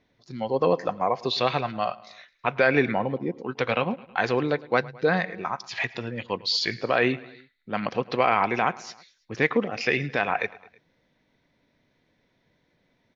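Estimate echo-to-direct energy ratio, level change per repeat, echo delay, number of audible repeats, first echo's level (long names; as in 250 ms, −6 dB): −19.5 dB, −4.5 dB, 107 ms, 3, −21.0 dB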